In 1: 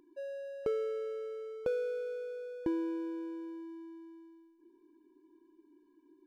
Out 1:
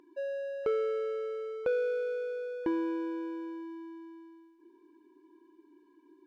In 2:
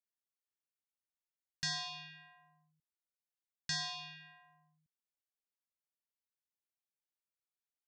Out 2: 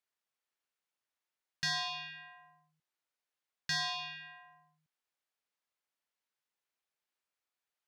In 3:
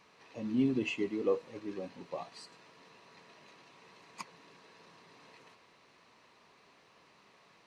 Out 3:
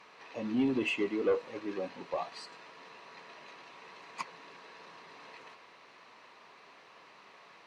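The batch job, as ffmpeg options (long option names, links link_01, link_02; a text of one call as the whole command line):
ffmpeg -i in.wav -filter_complex "[0:a]asplit=2[link_01][link_02];[link_02]highpass=frequency=720:poles=1,volume=15dB,asoftclip=type=tanh:threshold=-19.5dB[link_03];[link_01][link_03]amix=inputs=2:normalize=0,lowpass=frequency=2500:poles=1,volume=-6dB" out.wav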